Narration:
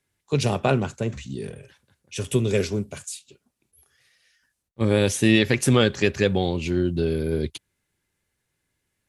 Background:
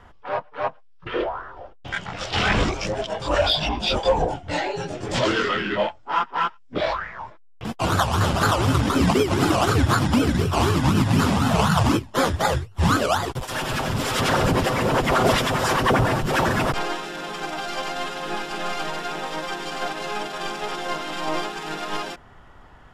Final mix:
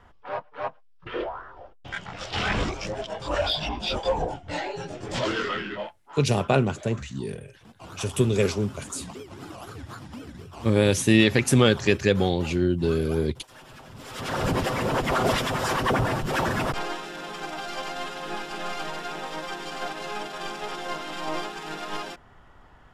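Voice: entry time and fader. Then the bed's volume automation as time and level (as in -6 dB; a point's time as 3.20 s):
5.85 s, 0.0 dB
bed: 5.59 s -5.5 dB
6.21 s -21 dB
13.90 s -21 dB
14.48 s -4.5 dB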